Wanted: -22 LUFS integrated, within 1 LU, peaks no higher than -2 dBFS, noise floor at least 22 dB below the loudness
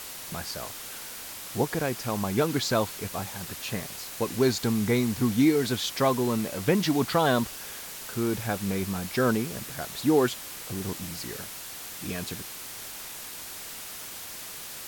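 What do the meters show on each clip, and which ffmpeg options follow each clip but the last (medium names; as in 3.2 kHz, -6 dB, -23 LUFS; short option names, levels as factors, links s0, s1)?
noise floor -40 dBFS; noise floor target -51 dBFS; loudness -28.5 LUFS; peak level -11.0 dBFS; loudness target -22.0 LUFS
-> -af "afftdn=nr=11:nf=-40"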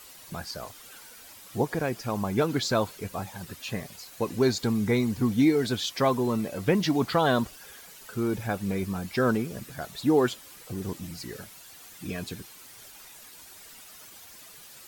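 noise floor -49 dBFS; noise floor target -50 dBFS
-> -af "afftdn=nr=6:nf=-49"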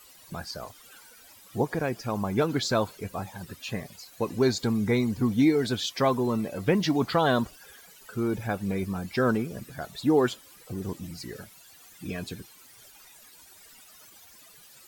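noise floor -53 dBFS; loudness -28.0 LUFS; peak level -11.5 dBFS; loudness target -22.0 LUFS
-> -af "volume=2"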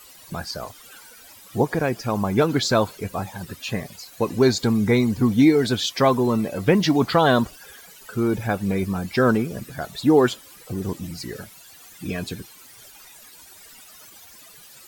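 loudness -22.0 LUFS; peak level -5.5 dBFS; noise floor -47 dBFS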